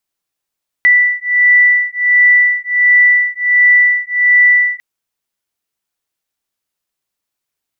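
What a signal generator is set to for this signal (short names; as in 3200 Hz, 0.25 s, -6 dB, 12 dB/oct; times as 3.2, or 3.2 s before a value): beating tones 1970 Hz, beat 1.4 Hz, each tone -10.5 dBFS 3.95 s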